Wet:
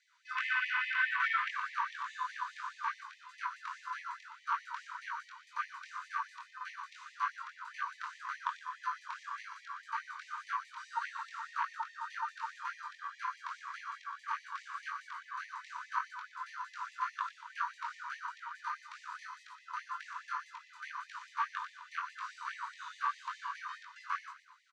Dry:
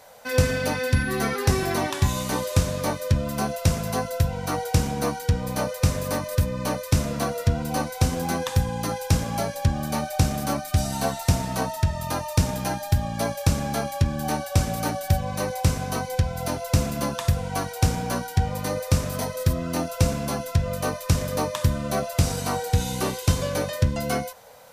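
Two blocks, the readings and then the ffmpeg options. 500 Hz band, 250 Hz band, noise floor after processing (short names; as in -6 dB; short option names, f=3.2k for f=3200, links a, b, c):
under -40 dB, under -40 dB, -61 dBFS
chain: -filter_complex "[0:a]lowpass=f=6.8k:w=0.5412,lowpass=f=6.8k:w=1.3066,afwtdn=0.0355,highpass=97,bandreject=f=5.3k:w=16,acrossover=split=4000[a][b];[b]acompressor=threshold=-59dB:ratio=4:attack=1:release=60[c];[a][c]amix=inputs=2:normalize=0,highshelf=f=3.3k:g=-9,asoftclip=type=tanh:threshold=-18.5dB,flanger=delay=19.5:depth=5.1:speed=1.8,asplit=6[d][e][f][g][h][i];[e]adelay=119,afreqshift=-41,volume=-11dB[j];[f]adelay=238,afreqshift=-82,volume=-17.7dB[k];[g]adelay=357,afreqshift=-123,volume=-24.5dB[l];[h]adelay=476,afreqshift=-164,volume=-31.2dB[m];[i]adelay=595,afreqshift=-205,volume=-38dB[n];[d][j][k][l][m][n]amix=inputs=6:normalize=0,afftfilt=real='re*gte(b*sr/1024,890*pow(1800/890,0.5+0.5*sin(2*PI*4.8*pts/sr)))':imag='im*gte(b*sr/1024,890*pow(1800/890,0.5+0.5*sin(2*PI*4.8*pts/sr)))':win_size=1024:overlap=0.75,volume=8dB"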